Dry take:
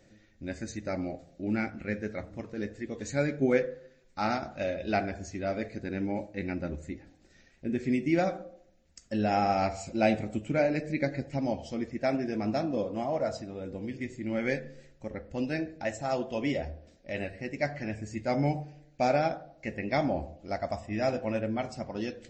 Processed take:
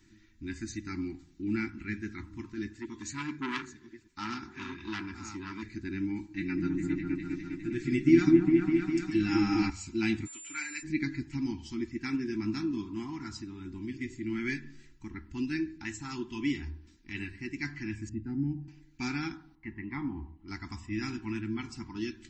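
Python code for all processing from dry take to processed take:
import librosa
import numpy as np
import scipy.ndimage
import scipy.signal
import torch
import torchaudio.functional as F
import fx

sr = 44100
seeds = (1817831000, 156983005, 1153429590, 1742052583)

y = fx.chain(x, sr, fx.reverse_delay(ms=690, wet_db=-12),
    fx.highpass(hz=110.0, slope=6),
    fx.transformer_sat(knee_hz=2100.0), at=(2.7, 5.63))
y = fx.chain(y, sr, fx.comb(ms=6.4, depth=0.77),
    fx.echo_opening(ms=203, hz=750, octaves=1, feedback_pct=70, wet_db=0), at=(6.3, 9.7))
y = fx.highpass(y, sr, hz=1000.0, slope=12, at=(10.25, 10.82), fade=0.02)
y = fx.comb(y, sr, ms=7.3, depth=0.52, at=(10.25, 10.82), fade=0.02)
y = fx.dmg_tone(y, sr, hz=7200.0, level_db=-40.0, at=(10.25, 10.82), fade=0.02)
y = fx.chain(y, sr, fx.moving_average(points=40),
    fx.peak_eq(hz=350.0, db=-6.0, octaves=0.26),
    fx.band_squash(depth_pct=40), at=(18.09, 18.68))
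y = fx.chain(y, sr, fx.lowpass(hz=1400.0, slope=12),
    fx.low_shelf(hz=420.0, db=-5.5),
    fx.comb(ms=1.0, depth=0.43), at=(19.55, 20.48))
y = scipy.signal.sosfilt(scipy.signal.ellip(3, 1.0, 50, [350.0, 910.0], 'bandstop', fs=sr, output='sos'), y)
y = y + 0.37 * np.pad(y, (int(3.0 * sr / 1000.0), 0))[:len(y)]
y = fx.dynamic_eq(y, sr, hz=880.0, q=1.2, threshold_db=-48.0, ratio=4.0, max_db=-5)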